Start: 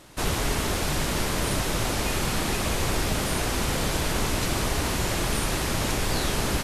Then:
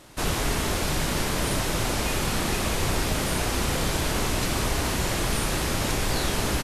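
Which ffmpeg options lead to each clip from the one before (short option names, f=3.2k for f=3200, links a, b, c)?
-filter_complex "[0:a]asplit=2[a][b];[b]adelay=32,volume=-11dB[c];[a][c]amix=inputs=2:normalize=0"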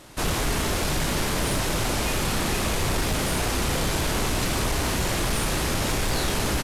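-af "asoftclip=type=tanh:threshold=-19.5dB,volume=2.5dB"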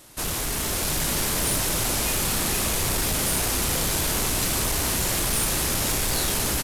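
-af "aemphasis=mode=production:type=50kf,dynaudnorm=f=510:g=3:m=3.5dB,volume=-6dB"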